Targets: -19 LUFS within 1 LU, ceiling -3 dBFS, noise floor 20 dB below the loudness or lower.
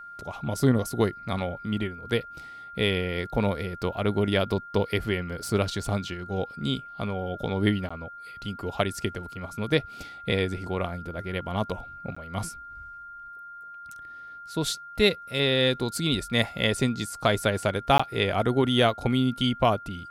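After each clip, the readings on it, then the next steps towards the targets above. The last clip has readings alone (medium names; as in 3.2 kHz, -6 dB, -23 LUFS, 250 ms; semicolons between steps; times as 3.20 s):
dropouts 3; longest dropout 15 ms; steady tone 1.4 kHz; tone level -40 dBFS; loudness -27.0 LUFS; peak level -8.5 dBFS; loudness target -19.0 LUFS
-> interpolate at 7.89/12.15/17.98 s, 15 ms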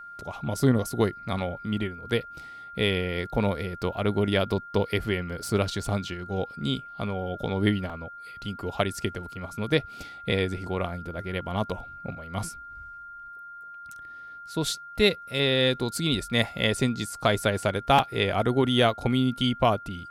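dropouts 0; steady tone 1.4 kHz; tone level -40 dBFS
-> band-stop 1.4 kHz, Q 30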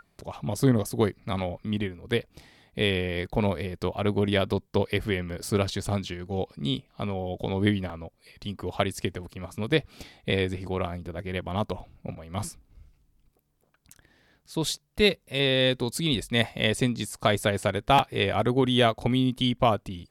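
steady tone not found; loudness -27.0 LUFS; peak level -8.5 dBFS; loudness target -19.0 LUFS
-> trim +8 dB; peak limiter -3 dBFS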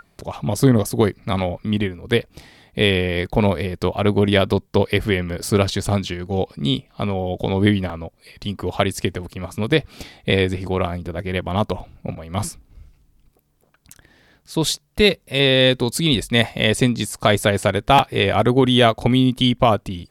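loudness -19.5 LUFS; peak level -3.0 dBFS; noise floor -61 dBFS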